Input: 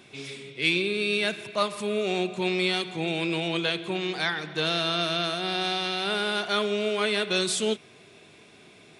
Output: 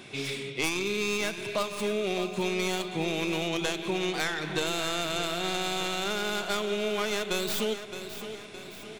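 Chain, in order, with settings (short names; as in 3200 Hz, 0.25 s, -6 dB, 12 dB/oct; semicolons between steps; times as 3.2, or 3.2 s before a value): tracing distortion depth 0.15 ms; compressor 6:1, threshold -32 dBFS, peak gain reduction 13.5 dB; on a send: feedback echo 0.616 s, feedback 50%, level -11 dB; on the sum: gain +5.5 dB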